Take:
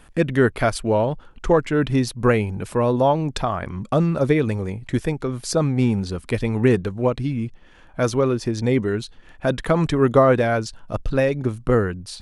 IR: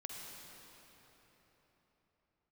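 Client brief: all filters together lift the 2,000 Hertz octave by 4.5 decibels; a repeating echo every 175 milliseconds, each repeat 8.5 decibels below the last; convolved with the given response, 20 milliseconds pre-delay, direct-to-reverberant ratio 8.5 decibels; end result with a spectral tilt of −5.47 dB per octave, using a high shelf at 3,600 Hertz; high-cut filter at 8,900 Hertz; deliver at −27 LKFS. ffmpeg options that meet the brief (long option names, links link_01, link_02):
-filter_complex "[0:a]lowpass=8900,equalizer=frequency=2000:width_type=o:gain=4,highshelf=frequency=3600:gain=7,aecho=1:1:175|350|525|700:0.376|0.143|0.0543|0.0206,asplit=2[link_01][link_02];[1:a]atrim=start_sample=2205,adelay=20[link_03];[link_02][link_03]afir=irnorm=-1:irlink=0,volume=-6.5dB[link_04];[link_01][link_04]amix=inputs=2:normalize=0,volume=-7.5dB"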